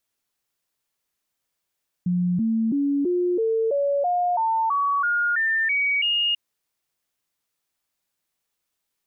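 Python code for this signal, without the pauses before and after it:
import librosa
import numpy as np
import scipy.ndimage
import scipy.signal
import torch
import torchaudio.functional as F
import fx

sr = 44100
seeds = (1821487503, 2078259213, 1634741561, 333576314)

y = fx.stepped_sweep(sr, from_hz=178.0, direction='up', per_octave=3, tones=13, dwell_s=0.33, gap_s=0.0, level_db=-19.0)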